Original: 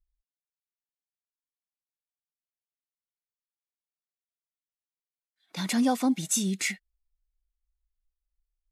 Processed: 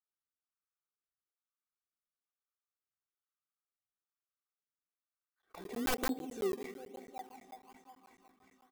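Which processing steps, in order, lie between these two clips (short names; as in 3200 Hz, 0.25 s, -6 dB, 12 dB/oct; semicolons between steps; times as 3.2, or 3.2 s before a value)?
HPF 300 Hz 6 dB/oct; echo with dull and thin repeats by turns 0.182 s, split 1200 Hz, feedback 83%, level -13.5 dB; auto-wah 420–1300 Hz, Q 7.5, down, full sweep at -34.5 dBFS; on a send at -13.5 dB: reverb RT60 3.3 s, pre-delay 8 ms; on the sum: wrapped overs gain 36 dB; in parallel at -4.5 dB: decimation with a swept rate 21×, swing 100% 1.1 Hz; on the sum: high shelf 9600 Hz +8 dB; comb 2.6 ms, depth 42%; crackling interface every 0.11 s, samples 512, zero, from 0.36; gain +6.5 dB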